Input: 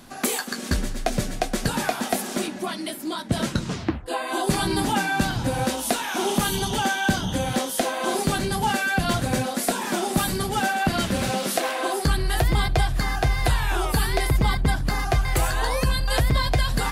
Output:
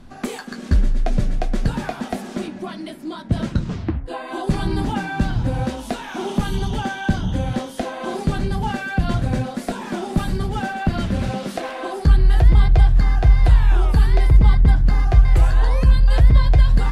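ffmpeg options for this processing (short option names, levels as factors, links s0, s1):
-af "aemphasis=mode=reproduction:type=bsi,bandreject=f=135.6:t=h:w=4,bandreject=f=271.2:t=h:w=4,bandreject=f=406.8:t=h:w=4,bandreject=f=542.4:t=h:w=4,bandreject=f=678:t=h:w=4,bandreject=f=813.6:t=h:w=4,bandreject=f=949.2:t=h:w=4,bandreject=f=1084.8:t=h:w=4,bandreject=f=1220.4:t=h:w=4,bandreject=f=1356:t=h:w=4,bandreject=f=1491.6:t=h:w=4,bandreject=f=1627.2:t=h:w=4,bandreject=f=1762.8:t=h:w=4,bandreject=f=1898.4:t=h:w=4,bandreject=f=2034:t=h:w=4,bandreject=f=2169.6:t=h:w=4,bandreject=f=2305.2:t=h:w=4,bandreject=f=2440.8:t=h:w=4,bandreject=f=2576.4:t=h:w=4,volume=0.708"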